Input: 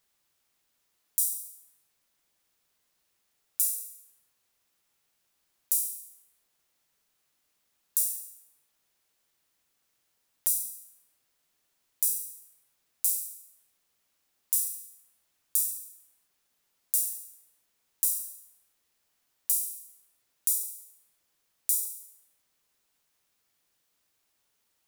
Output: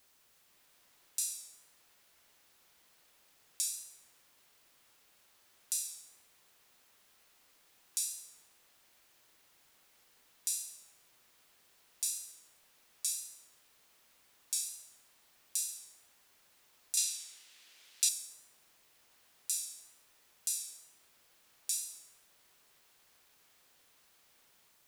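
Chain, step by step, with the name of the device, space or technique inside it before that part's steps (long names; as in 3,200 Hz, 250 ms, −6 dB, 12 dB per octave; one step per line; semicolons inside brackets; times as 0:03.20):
dictaphone (band-pass filter 330–4,400 Hz; automatic gain control; tape wow and flutter; white noise bed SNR 23 dB)
0:16.97–0:18.09: meter weighting curve D
level −3 dB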